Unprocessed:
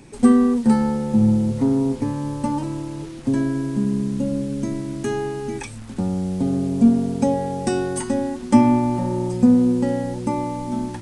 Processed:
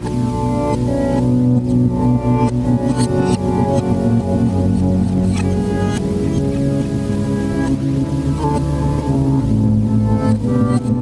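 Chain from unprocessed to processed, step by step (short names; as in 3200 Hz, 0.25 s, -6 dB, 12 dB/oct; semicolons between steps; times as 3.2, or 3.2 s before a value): whole clip reversed; phaser 0.62 Hz, delay 2.2 ms, feedback 38%; repeats that get brighter 0.291 s, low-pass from 400 Hz, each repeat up 1 oct, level -3 dB; dynamic EQ 340 Hz, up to -4 dB, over -29 dBFS, Q 2.3; HPF 220 Hz 6 dB/oct; low shelf 440 Hz +4.5 dB; harmoniser -12 st -2 dB, +3 st -14 dB; compressor 6:1, threshold -16 dBFS, peak gain reduction 13 dB; gain +5 dB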